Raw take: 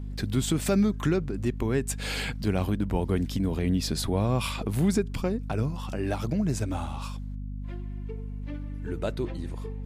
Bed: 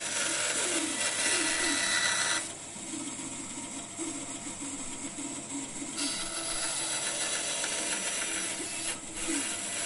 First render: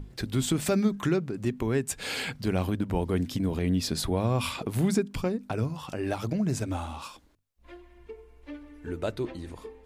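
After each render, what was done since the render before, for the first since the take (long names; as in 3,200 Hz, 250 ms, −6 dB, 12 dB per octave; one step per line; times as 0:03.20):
mains-hum notches 50/100/150/200/250 Hz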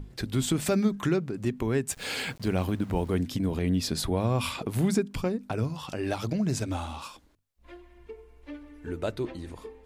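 0:01.91–0:03.19: centre clipping without the shift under −46.5 dBFS
0:05.64–0:07.00: parametric band 4,300 Hz +4.5 dB 1.3 octaves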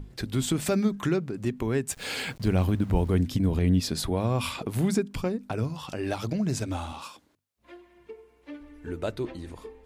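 0:02.36–0:03.80: low-shelf EQ 130 Hz +10 dB
0:06.92–0:08.60: high-pass filter 120 Hz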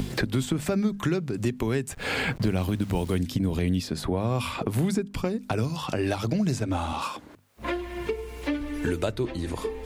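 multiband upward and downward compressor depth 100%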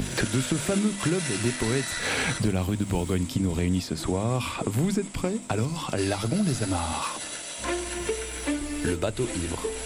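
mix in bed −4 dB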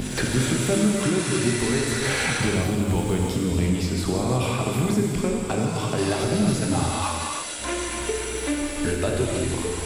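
reverb whose tail is shaped and stops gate 380 ms flat, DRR −1 dB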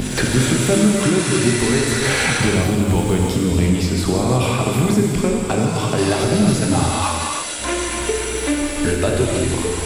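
level +6 dB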